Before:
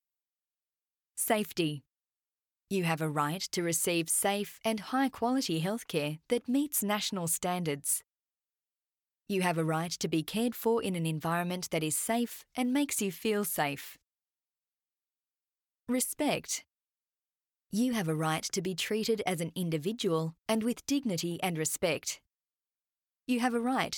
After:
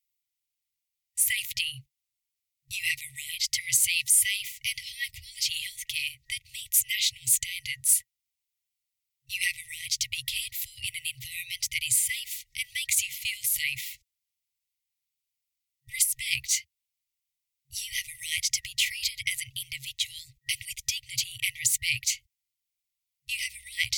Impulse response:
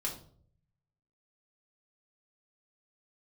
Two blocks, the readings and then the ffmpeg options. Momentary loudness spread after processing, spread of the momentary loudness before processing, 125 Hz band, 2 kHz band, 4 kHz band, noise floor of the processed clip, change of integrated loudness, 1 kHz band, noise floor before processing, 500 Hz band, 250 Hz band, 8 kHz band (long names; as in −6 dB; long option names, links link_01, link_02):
12 LU, 5 LU, −13.0 dB, +7.0 dB, +9.0 dB, below −85 dBFS, +4.0 dB, below −40 dB, below −85 dBFS, below −40 dB, below −35 dB, +9.0 dB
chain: -af "afftfilt=real='re*(1-between(b*sr/4096,130,1900))':imag='im*(1-between(b*sr/4096,130,1900))':win_size=4096:overlap=0.75,volume=9dB"